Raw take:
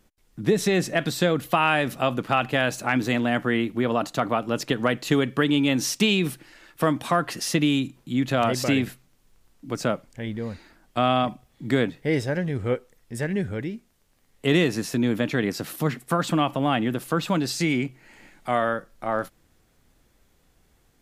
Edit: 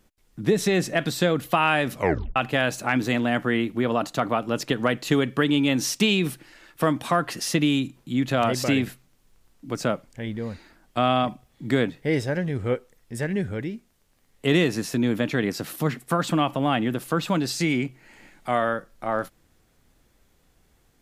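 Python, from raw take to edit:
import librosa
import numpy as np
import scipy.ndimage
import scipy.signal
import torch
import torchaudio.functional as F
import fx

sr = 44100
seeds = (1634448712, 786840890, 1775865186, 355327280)

y = fx.edit(x, sr, fx.tape_stop(start_s=1.94, length_s=0.42), tone=tone)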